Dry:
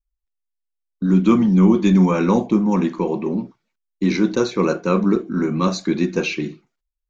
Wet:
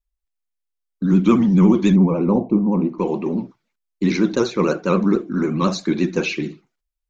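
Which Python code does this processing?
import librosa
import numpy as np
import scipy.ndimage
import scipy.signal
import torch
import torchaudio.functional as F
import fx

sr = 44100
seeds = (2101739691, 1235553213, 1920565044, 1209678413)

y = fx.moving_average(x, sr, points=26, at=(1.94, 2.98), fade=0.02)
y = fx.vibrato(y, sr, rate_hz=14.0, depth_cents=86.0)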